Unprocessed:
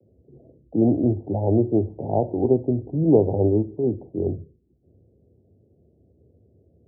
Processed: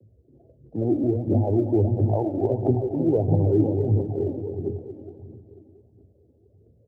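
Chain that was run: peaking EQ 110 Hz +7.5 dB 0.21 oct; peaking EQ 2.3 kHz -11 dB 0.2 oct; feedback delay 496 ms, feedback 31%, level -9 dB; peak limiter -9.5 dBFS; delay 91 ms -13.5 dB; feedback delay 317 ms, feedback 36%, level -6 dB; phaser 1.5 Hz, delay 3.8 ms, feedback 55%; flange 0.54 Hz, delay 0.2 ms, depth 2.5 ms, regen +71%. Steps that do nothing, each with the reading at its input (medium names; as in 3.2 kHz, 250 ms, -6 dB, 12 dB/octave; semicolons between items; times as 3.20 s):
peaking EQ 2.3 kHz: input has nothing above 850 Hz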